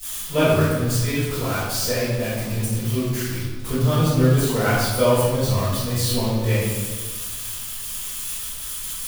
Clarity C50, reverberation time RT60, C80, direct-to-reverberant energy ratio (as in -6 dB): -2.0 dB, 1.4 s, 1.0 dB, -19.0 dB